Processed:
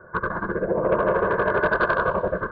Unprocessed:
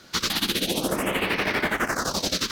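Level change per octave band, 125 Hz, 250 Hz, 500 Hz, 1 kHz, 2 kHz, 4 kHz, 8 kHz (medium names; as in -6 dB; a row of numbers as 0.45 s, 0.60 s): +3.0 dB, -1.0 dB, +8.5 dB, +6.0 dB, +2.0 dB, under -20 dB, under -40 dB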